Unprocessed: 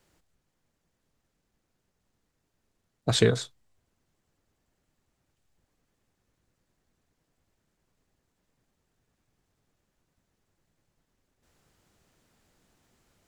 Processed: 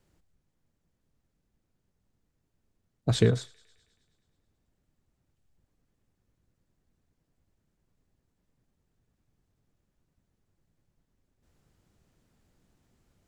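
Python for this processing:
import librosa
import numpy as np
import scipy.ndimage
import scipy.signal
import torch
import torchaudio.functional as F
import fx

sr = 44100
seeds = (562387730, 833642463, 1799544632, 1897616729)

y = fx.low_shelf(x, sr, hz=340.0, db=10.0)
y = fx.echo_wet_highpass(y, sr, ms=107, feedback_pct=67, hz=1600.0, wet_db=-22.5)
y = y * librosa.db_to_amplitude(-6.5)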